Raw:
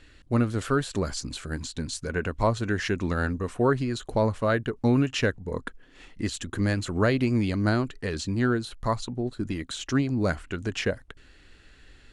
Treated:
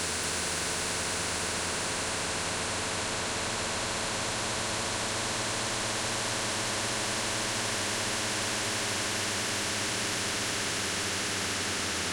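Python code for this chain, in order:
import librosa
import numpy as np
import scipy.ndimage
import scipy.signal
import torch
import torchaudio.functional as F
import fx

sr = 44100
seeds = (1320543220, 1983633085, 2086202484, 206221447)

p1 = scipy.signal.sosfilt(scipy.signal.butter(2, 49.0, 'highpass', fs=sr, output='sos'), x)
p2 = fx.dispersion(p1, sr, late='lows', ms=77.0, hz=1000.0)
p3 = 10.0 ** (-27.0 / 20.0) * np.tanh(p2 / 10.0 ** (-27.0 / 20.0))
p4 = p2 + F.gain(torch.from_numpy(p3), -5.0).numpy()
p5 = fx.paulstretch(p4, sr, seeds[0], factor=14.0, window_s=1.0, from_s=2.14)
p6 = p5 + fx.echo_single(p5, sr, ms=237, db=-4.0, dry=0)
p7 = fx.spectral_comp(p6, sr, ratio=4.0)
y = F.gain(torch.from_numpy(p7), -8.0).numpy()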